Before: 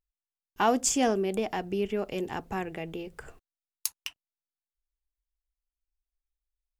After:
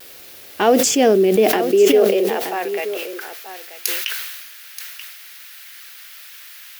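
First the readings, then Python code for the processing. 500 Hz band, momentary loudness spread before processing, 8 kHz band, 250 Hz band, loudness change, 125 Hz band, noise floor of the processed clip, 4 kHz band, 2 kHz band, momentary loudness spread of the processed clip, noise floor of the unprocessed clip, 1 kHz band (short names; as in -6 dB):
+16.0 dB, 17 LU, +8.5 dB, +11.0 dB, +13.0 dB, n/a, -40 dBFS, +13.5 dB, +12.0 dB, 23 LU, under -85 dBFS, +8.0 dB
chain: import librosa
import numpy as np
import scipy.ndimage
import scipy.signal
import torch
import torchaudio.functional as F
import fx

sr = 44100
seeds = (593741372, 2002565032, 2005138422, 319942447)

p1 = fx.quant_dither(x, sr, seeds[0], bits=6, dither='triangular')
p2 = x + (p1 * librosa.db_to_amplitude(-10.0))
p3 = fx.filter_sweep_highpass(p2, sr, from_hz=91.0, to_hz=1500.0, start_s=0.53, end_s=3.35, q=1.6)
p4 = fx.peak_eq(p3, sr, hz=380.0, db=4.0, octaves=1.1)
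p5 = p4 + fx.echo_single(p4, sr, ms=930, db=-12.0, dry=0)
p6 = fx.vibrato(p5, sr, rate_hz=0.57, depth_cents=21.0)
p7 = fx.graphic_eq(p6, sr, hz=(125, 250, 500, 1000, 8000), db=(-11, -5, 3, -9, -9))
p8 = fx.sustainer(p7, sr, db_per_s=39.0)
y = p8 * librosa.db_to_amplitude(8.5)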